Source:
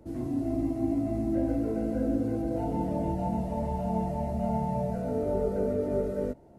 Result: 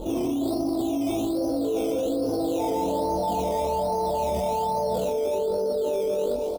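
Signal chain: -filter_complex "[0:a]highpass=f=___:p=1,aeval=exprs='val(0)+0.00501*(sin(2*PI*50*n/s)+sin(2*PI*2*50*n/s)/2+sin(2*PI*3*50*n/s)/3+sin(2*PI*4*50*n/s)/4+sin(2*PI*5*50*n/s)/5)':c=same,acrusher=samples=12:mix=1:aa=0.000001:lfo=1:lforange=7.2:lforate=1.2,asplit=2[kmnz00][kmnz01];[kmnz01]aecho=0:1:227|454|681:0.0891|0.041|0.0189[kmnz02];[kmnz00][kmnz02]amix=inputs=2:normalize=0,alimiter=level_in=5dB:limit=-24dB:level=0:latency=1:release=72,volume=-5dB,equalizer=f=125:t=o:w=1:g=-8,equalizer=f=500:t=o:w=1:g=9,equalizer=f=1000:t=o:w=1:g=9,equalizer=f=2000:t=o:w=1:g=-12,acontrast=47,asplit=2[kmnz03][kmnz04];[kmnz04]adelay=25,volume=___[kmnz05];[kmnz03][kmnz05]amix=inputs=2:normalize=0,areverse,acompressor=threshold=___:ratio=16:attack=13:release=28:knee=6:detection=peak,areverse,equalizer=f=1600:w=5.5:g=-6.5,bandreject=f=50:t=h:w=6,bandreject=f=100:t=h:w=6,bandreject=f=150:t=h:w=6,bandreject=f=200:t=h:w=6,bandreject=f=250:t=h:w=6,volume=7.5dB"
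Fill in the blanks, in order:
89, -2.5dB, -33dB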